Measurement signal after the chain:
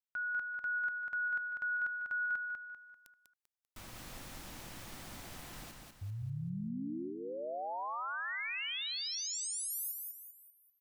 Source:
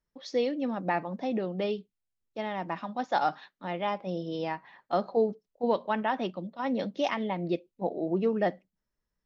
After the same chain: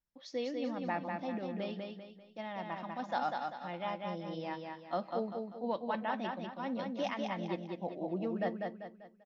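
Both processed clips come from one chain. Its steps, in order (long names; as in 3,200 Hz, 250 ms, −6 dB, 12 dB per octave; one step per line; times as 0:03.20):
parametric band 420 Hz −10.5 dB 0.2 octaves
repeating echo 196 ms, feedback 40%, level −4 dB
level −7.5 dB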